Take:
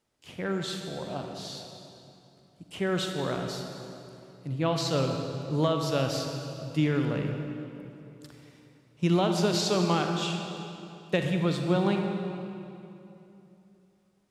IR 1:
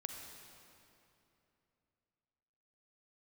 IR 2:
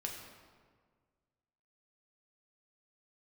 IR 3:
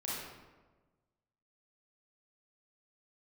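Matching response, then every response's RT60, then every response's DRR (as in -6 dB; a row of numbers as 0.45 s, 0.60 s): 1; 2.9 s, 1.7 s, 1.3 s; 3.0 dB, -0.5 dB, -7.5 dB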